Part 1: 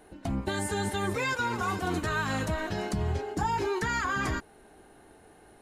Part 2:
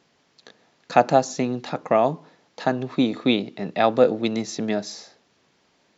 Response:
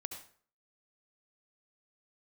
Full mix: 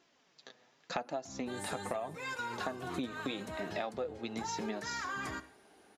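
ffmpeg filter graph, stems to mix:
-filter_complex "[0:a]highpass=85,adelay=1000,volume=0.355,asplit=2[s0][s1];[s1]volume=0.531[s2];[1:a]bandreject=f=4300:w=21,flanger=delay=2.9:depth=5.2:regen=35:speed=0.81:shape=sinusoidal,volume=0.891[s3];[2:a]atrim=start_sample=2205[s4];[s2][s4]afir=irnorm=-1:irlink=0[s5];[s0][s3][s5]amix=inputs=3:normalize=0,lowshelf=f=290:g=-6.5,acompressor=threshold=0.02:ratio=12"

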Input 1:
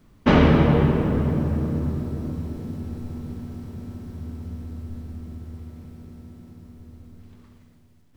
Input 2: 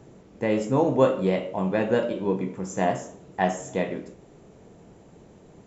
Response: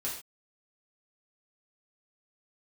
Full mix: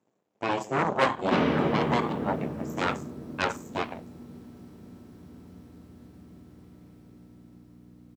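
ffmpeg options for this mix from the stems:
-filter_complex "[0:a]aeval=exprs='val(0)+0.0178*(sin(2*PI*60*n/s)+sin(2*PI*2*60*n/s)/2+sin(2*PI*3*60*n/s)/3+sin(2*PI*4*60*n/s)/4+sin(2*PI*5*60*n/s)/5)':c=same,adelay=1050,volume=0.447[s0];[1:a]aeval=exprs='0.531*(cos(1*acos(clip(val(0)/0.531,-1,1)))-cos(1*PI/2))+0.168*(cos(3*acos(clip(val(0)/0.531,-1,1)))-cos(3*PI/2))+0.0668*(cos(4*acos(clip(val(0)/0.531,-1,1)))-cos(4*PI/2))+0.0944*(cos(8*acos(clip(val(0)/0.531,-1,1)))-cos(8*PI/2))':c=same,volume=0.841[s1];[s0][s1]amix=inputs=2:normalize=0,highpass=190"

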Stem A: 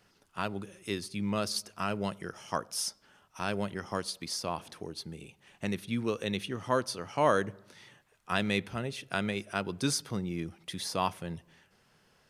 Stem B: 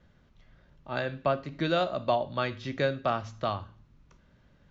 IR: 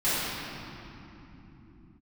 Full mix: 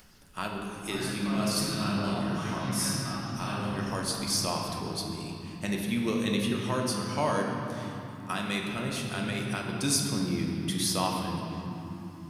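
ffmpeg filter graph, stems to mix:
-filter_complex "[0:a]alimiter=limit=0.106:level=0:latency=1:release=440,crystalizer=i=1.5:c=0,volume=0.944,asplit=2[s0][s1];[s1]volume=0.237[s2];[1:a]equalizer=f=550:w=1.5:g=-13,alimiter=level_in=1.33:limit=0.0631:level=0:latency=1,volume=0.75,volume=0.335,asplit=3[s3][s4][s5];[s4]volume=0.562[s6];[s5]apad=whole_len=542085[s7];[s0][s7]sidechaincompress=threshold=0.00282:ratio=8:attack=16:release=456[s8];[2:a]atrim=start_sample=2205[s9];[s2][s6]amix=inputs=2:normalize=0[s10];[s10][s9]afir=irnorm=-1:irlink=0[s11];[s8][s3][s11]amix=inputs=3:normalize=0,acompressor=mode=upward:threshold=0.00251:ratio=2.5"

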